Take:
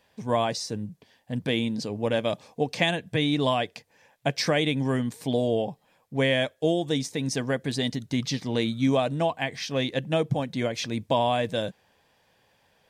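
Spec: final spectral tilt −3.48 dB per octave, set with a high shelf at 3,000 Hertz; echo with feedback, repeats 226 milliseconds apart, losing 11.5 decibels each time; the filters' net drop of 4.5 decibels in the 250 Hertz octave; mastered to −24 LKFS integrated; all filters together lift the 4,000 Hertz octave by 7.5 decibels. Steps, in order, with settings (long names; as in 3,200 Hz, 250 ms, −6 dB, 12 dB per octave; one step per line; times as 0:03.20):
parametric band 250 Hz −5.5 dB
high-shelf EQ 3,000 Hz +4 dB
parametric band 4,000 Hz +6.5 dB
repeating echo 226 ms, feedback 27%, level −11.5 dB
level +1 dB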